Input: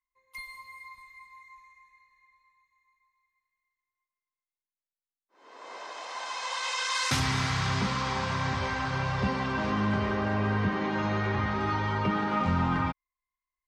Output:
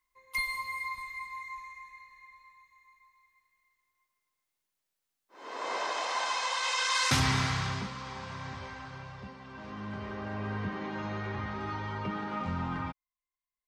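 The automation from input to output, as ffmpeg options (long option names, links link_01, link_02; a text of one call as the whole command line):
ffmpeg -i in.wav -af "volume=21.5dB,afade=type=out:start_time=5.61:duration=0.93:silence=0.354813,afade=type=out:start_time=7.28:duration=0.63:silence=0.251189,afade=type=out:start_time=8.52:duration=0.87:silence=0.398107,afade=type=in:start_time=9.39:duration=1.16:silence=0.266073" out.wav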